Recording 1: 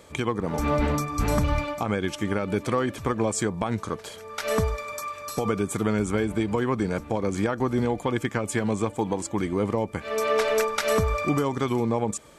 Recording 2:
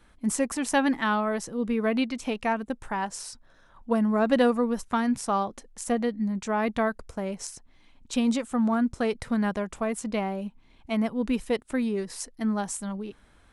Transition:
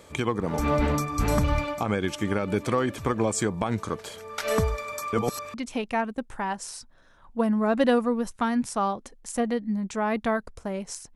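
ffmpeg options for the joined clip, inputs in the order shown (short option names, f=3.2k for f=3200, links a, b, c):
-filter_complex "[0:a]apad=whole_dur=11.15,atrim=end=11.15,asplit=2[a][b];[a]atrim=end=5.132[c];[b]atrim=start=5.128:end=5.542,asetpts=PTS-STARTPTS,areverse[d];[1:a]atrim=start=2.058:end=7.67[e];[c][d]acrossfade=d=0.004:c1=hsin:c2=hsin[f];[f][e]acrossfade=d=0.004:c1=hsin:c2=hsin"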